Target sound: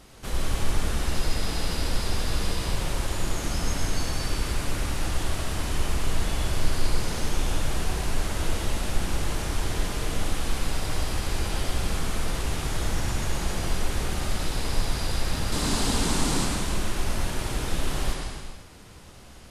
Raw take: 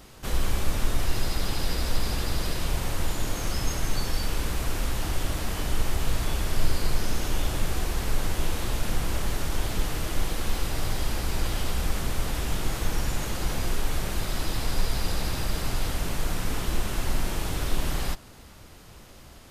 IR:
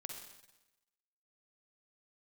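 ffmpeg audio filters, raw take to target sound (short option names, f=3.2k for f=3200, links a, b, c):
-filter_complex "[0:a]asettb=1/sr,asplit=3[a][b][c];[a]atrim=end=15.524[d];[b]atrim=start=15.52:end=16.45,asetpts=PTS-STARTPTS,afade=t=in:d=0.004:c=qsin,afade=t=out:st=0.926:d=0.004:c=qsin,equalizer=f=250:t=o:w=1:g=12,equalizer=f=1k:t=o:w=1:g=6,equalizer=f=4k:t=o:w=1:g=6,equalizer=f=8k:t=o:w=1:g=9[e];[c]atrim=start=16.446[f];[d][e]acrossfade=d=0.004:c1=hsin:c2=qsin[g];[g][f]acrossfade=d=0.004:c1=qsin:c2=hsin[h];[1:a]atrim=start_sample=2205,afade=t=out:st=0.31:d=0.01,atrim=end_sample=14112,asetrate=22932,aresample=44100[i];[h][i]afir=irnorm=-1:irlink=0"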